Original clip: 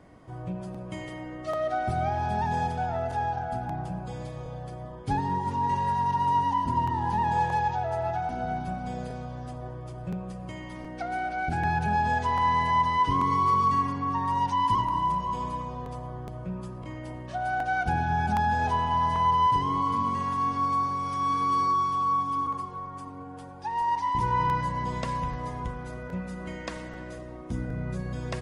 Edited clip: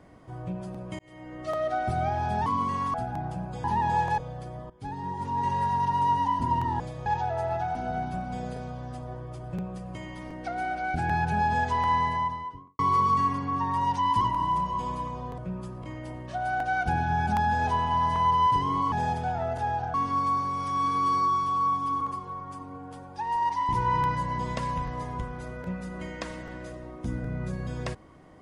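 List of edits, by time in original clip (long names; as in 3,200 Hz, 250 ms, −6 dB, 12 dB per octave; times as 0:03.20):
0:00.99–0:01.43: fade in
0:02.46–0:03.48: swap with 0:19.92–0:20.40
0:04.18–0:04.44: swap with 0:07.06–0:07.60
0:04.96–0:05.81: fade in, from −16 dB
0:12.39–0:13.33: fade out and dull
0:15.92–0:16.38: remove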